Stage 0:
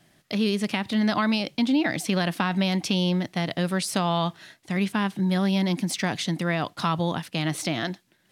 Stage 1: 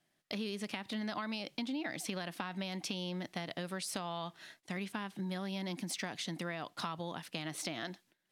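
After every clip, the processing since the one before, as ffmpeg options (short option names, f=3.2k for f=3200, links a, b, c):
-af "agate=range=-11dB:threshold=-54dB:ratio=16:detection=peak,equalizer=f=69:w=0.44:g=-9.5,acompressor=threshold=-30dB:ratio=6,volume=-5.5dB"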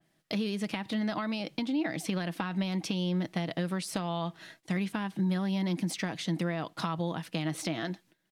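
-af "lowshelf=f=450:g=6.5,aecho=1:1:6.2:0.31,adynamicequalizer=threshold=0.00224:dfrequency=3300:dqfactor=0.7:tfrequency=3300:tqfactor=0.7:attack=5:release=100:ratio=0.375:range=1.5:mode=cutabove:tftype=highshelf,volume=3.5dB"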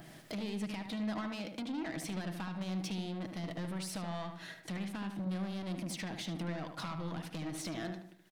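-filter_complex "[0:a]acompressor=mode=upward:threshold=-32dB:ratio=2.5,asoftclip=type=tanh:threshold=-32dB,asplit=2[a][b];[b]adelay=75,lowpass=f=2.5k:p=1,volume=-6dB,asplit=2[c][d];[d]adelay=75,lowpass=f=2.5k:p=1,volume=0.44,asplit=2[e][f];[f]adelay=75,lowpass=f=2.5k:p=1,volume=0.44,asplit=2[g][h];[h]adelay=75,lowpass=f=2.5k:p=1,volume=0.44,asplit=2[i][j];[j]adelay=75,lowpass=f=2.5k:p=1,volume=0.44[k];[c][e][g][i][k]amix=inputs=5:normalize=0[l];[a][l]amix=inputs=2:normalize=0,volume=-3.5dB"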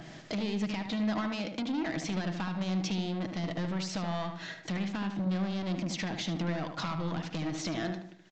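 -af "aresample=16000,aresample=44100,volume=6dB"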